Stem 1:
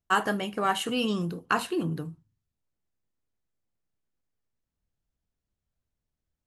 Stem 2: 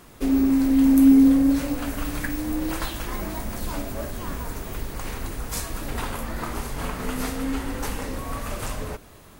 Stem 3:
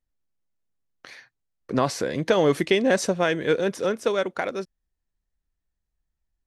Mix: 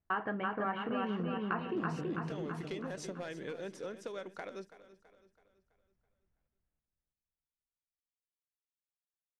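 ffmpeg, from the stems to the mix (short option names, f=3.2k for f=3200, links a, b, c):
-filter_complex "[0:a]lowpass=f=2.3k:w=0.5412,lowpass=f=2.3k:w=1.3066,volume=1dB,asplit=2[a][b];[b]volume=-3.5dB[c];[2:a]asoftclip=type=hard:threshold=-14dB,volume=-14.5dB,asplit=2[d][e];[e]volume=-17.5dB[f];[d]lowpass=10k,acompressor=threshold=-37dB:ratio=6,volume=0dB[g];[c][f]amix=inputs=2:normalize=0,aecho=0:1:329|658|987|1316|1645|1974:1|0.46|0.212|0.0973|0.0448|0.0206[h];[a][g][h]amix=inputs=3:normalize=0,acompressor=threshold=-37dB:ratio=2.5"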